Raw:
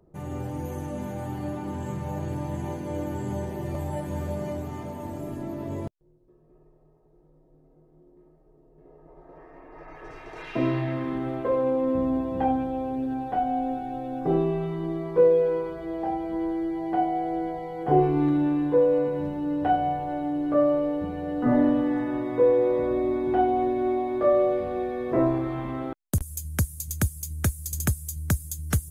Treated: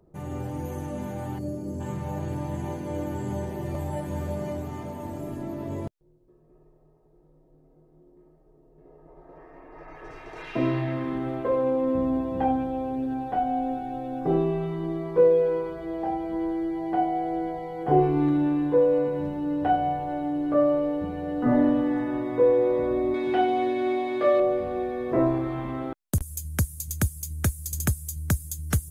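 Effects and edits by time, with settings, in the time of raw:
1.39–1.81 s: time-frequency box 710–4200 Hz -15 dB
23.14–24.40 s: frequency weighting D

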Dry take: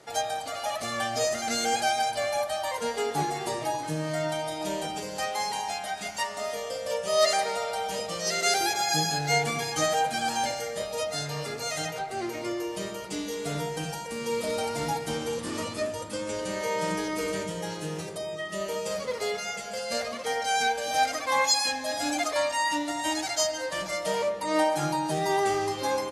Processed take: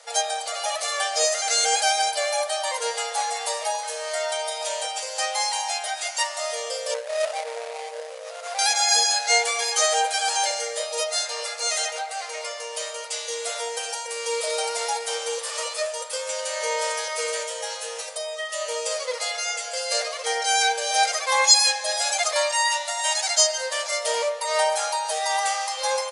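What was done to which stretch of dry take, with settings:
6.94–8.59 s: median filter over 41 samples
whole clip: FFT band-pass 460–11000 Hz; treble shelf 3 kHz +9.5 dB; trim +2 dB

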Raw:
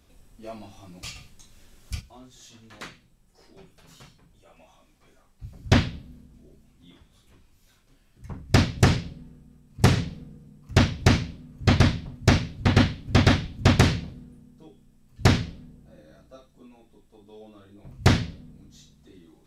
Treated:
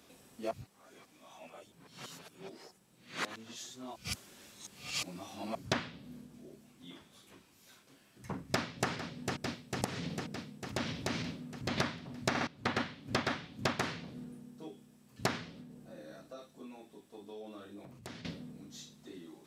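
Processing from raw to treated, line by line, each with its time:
0.51–5.55 s: reverse
8.47–8.91 s: echo throw 450 ms, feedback 70%, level -16 dB
9.84–11.78 s: compression, threshold -29 dBFS
12.29 s: stutter in place 0.06 s, 3 plays
15.60–18.25 s: compression, threshold -45 dBFS
whole clip: high-pass 210 Hz 12 dB/octave; dynamic bell 1.2 kHz, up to +8 dB, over -40 dBFS, Q 0.75; compression 12:1, threshold -34 dBFS; trim +3.5 dB

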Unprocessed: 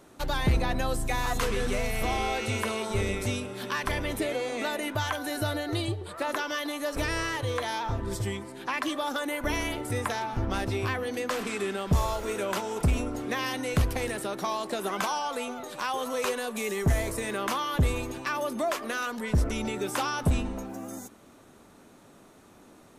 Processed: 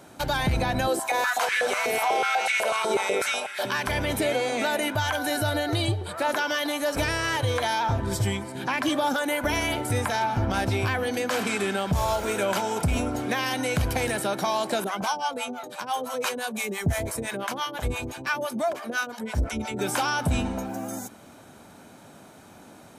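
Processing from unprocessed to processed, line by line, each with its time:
0.87–3.65 s: step-sequenced high-pass 8.1 Hz 370–1800 Hz
8.55–9.14 s: bass shelf 230 Hz +11.5 dB
14.84–19.79 s: harmonic tremolo 5.9 Hz, depth 100%, crossover 610 Hz
whole clip: high-pass 80 Hz; comb 1.3 ms, depth 35%; peak limiter -21.5 dBFS; trim +6 dB

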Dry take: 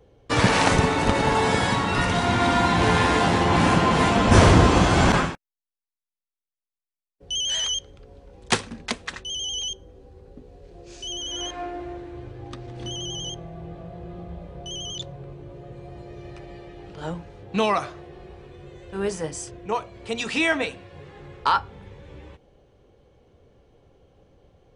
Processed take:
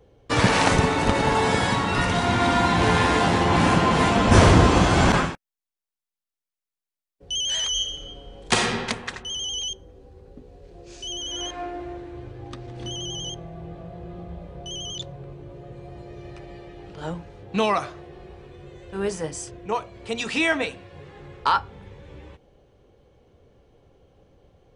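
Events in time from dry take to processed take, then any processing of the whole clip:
7.70–8.62 s: reverb throw, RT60 1.5 s, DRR -2.5 dB

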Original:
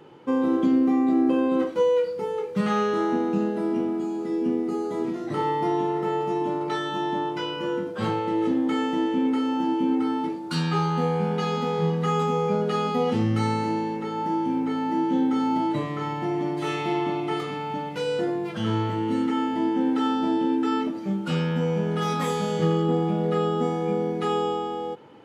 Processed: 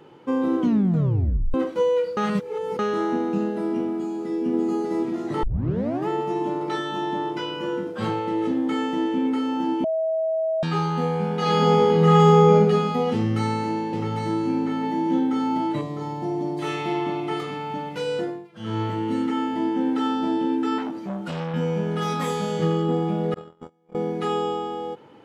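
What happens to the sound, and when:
0.59 s: tape stop 0.95 s
2.17–2.79 s: reverse
3.94–4.44 s: echo throw 590 ms, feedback 75%, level -2 dB
5.43 s: tape start 0.65 s
9.84–10.63 s: bleep 644 Hz -20.5 dBFS
11.37–12.54 s: reverb throw, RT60 1.6 s, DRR -5 dB
13.13–15.19 s: delay 798 ms -5.5 dB
15.81–16.59 s: high-order bell 1.9 kHz -10.5 dB
18.18–18.82 s: dip -21 dB, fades 0.30 s
20.78–21.54 s: transformer saturation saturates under 760 Hz
23.34–23.95 s: gate -21 dBFS, range -39 dB

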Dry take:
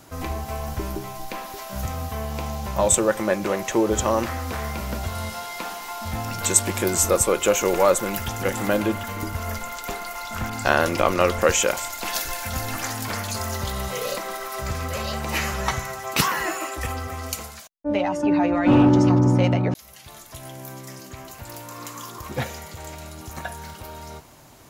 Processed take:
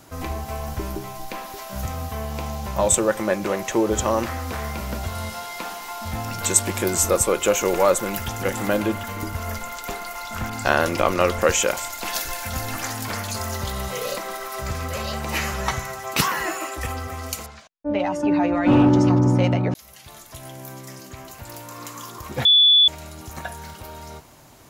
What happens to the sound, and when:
17.46–18.00 s: distance through air 130 m
22.45–22.88 s: bleep 3.45 kHz -10.5 dBFS

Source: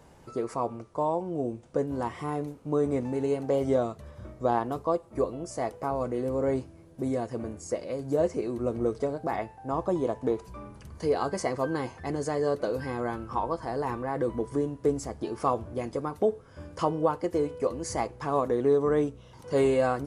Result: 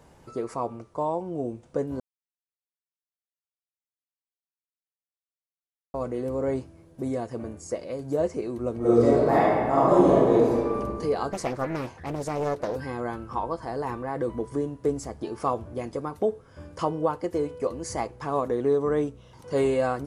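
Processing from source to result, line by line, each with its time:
2.00–5.94 s: mute
8.78–10.78 s: reverb throw, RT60 1.8 s, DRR -10 dB
11.32–12.76 s: loudspeaker Doppler distortion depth 0.62 ms

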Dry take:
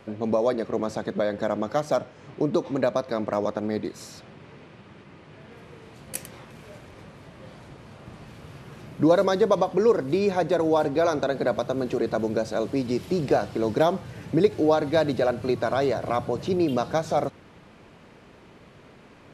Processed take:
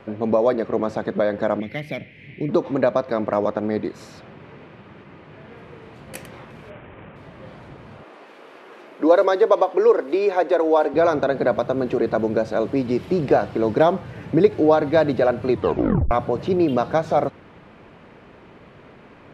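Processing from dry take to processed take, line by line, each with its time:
1.60–2.49 s: FFT filter 190 Hz 0 dB, 500 Hz -11 dB, 1.3 kHz -24 dB, 2.1 kHz +12 dB, 7.3 kHz -13 dB, 11 kHz +5 dB
6.70–7.16 s: CVSD coder 16 kbps
8.03–10.94 s: high-pass 320 Hz 24 dB/octave
15.51 s: tape stop 0.60 s
whole clip: tone controls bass -2 dB, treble -13 dB; trim +5 dB

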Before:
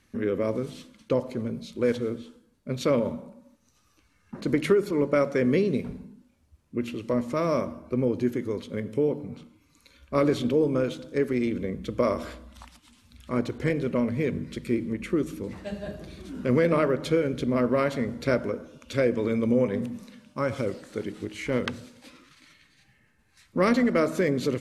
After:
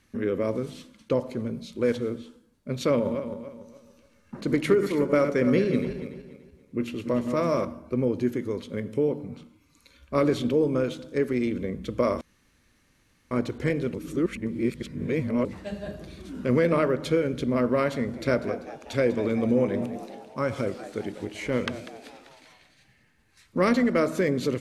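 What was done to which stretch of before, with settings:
2.91–7.65 s: backward echo that repeats 144 ms, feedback 54%, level -8 dB
12.21–13.31 s: room tone
13.94–15.45 s: reverse
17.94–23.77 s: frequency-shifting echo 195 ms, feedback 52%, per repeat +100 Hz, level -14 dB

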